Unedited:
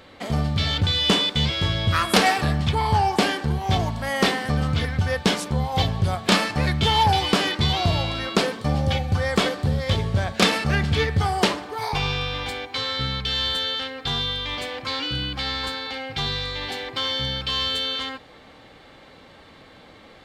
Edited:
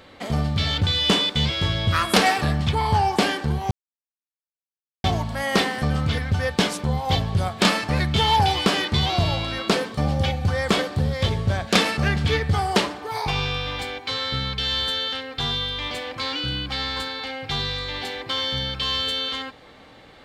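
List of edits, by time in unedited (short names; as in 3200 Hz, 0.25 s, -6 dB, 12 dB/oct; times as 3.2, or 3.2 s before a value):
3.71 insert silence 1.33 s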